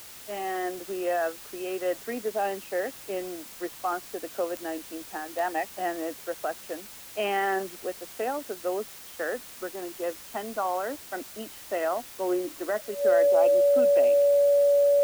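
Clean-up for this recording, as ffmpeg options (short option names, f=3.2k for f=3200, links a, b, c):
-af "adeclick=t=4,bandreject=f=570:w=30,afwtdn=0.0056"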